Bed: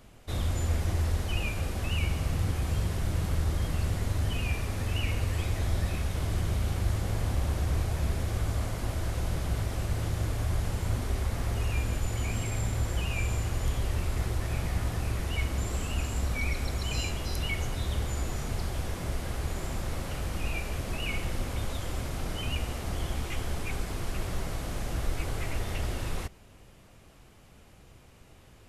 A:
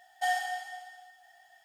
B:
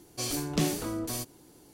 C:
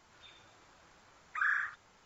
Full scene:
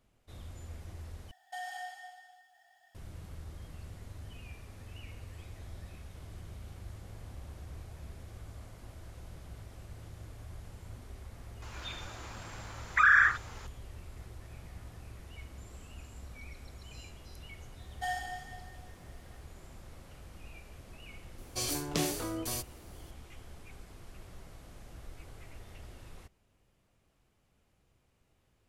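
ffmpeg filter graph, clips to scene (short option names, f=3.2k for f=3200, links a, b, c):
-filter_complex "[1:a]asplit=2[a][b];[0:a]volume=-17.5dB[c];[a]alimiter=level_in=3dB:limit=-24dB:level=0:latency=1:release=99,volume=-3dB[d];[3:a]alimiter=level_in=26.5dB:limit=-1dB:release=50:level=0:latency=1[e];[2:a]equalizer=f=200:w=1.5:g=-9.5[f];[c]asplit=2[g][h];[g]atrim=end=1.314[i];[d]atrim=end=1.64,asetpts=PTS-STARTPTS,volume=-6dB[j];[h]atrim=start=2.946[k];[e]atrim=end=2.05,asetpts=PTS-STARTPTS,volume=-13dB,afade=t=in:d=0.004:c=hsin,afade=t=out:st=2.046:d=0.004:c=hsin,adelay=512442S[l];[b]atrim=end=1.64,asetpts=PTS-STARTPTS,volume=-6.5dB,afade=t=in:d=0.004:c=hsin,afade=t=out:st=1.636:d=0.004:c=hsin,adelay=784980S[m];[f]atrim=end=1.73,asetpts=PTS-STARTPTS,volume=-1dB,afade=t=in:d=0.004:c=hsin,afade=t=out:st=1.726:d=0.004:c=hsin,adelay=21380[n];[i][j]acrossfade=d=0.004:c1=hsin:c2=hsin[o];[o][k]acrossfade=d=0.004:c1=hsin:c2=hsin[p];[p][l][m][n]amix=inputs=4:normalize=0"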